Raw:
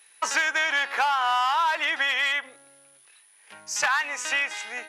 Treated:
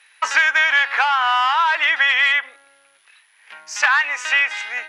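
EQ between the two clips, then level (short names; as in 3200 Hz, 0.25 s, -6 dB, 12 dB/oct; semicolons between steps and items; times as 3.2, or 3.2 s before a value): band-pass 1900 Hz, Q 0.88; +9.0 dB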